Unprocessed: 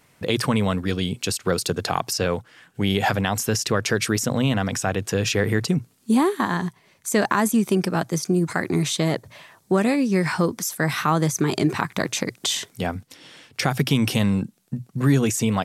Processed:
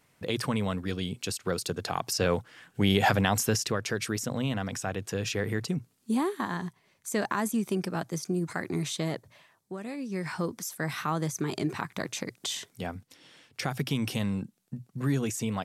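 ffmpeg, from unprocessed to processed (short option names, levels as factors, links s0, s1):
-af "volume=2.66,afade=t=in:st=1.94:d=0.41:silence=0.501187,afade=t=out:st=3.38:d=0.41:silence=0.446684,afade=t=out:st=9.05:d=0.73:silence=0.281838,afade=t=in:st=9.78:d=0.71:silence=0.298538"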